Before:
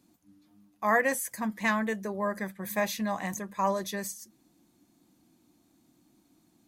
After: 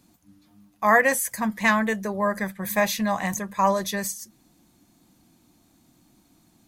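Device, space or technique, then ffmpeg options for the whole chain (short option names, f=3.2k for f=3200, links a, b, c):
low shelf boost with a cut just above: -af "lowshelf=f=67:g=8,equalizer=f=320:t=o:w=1:g=-5.5,volume=7.5dB"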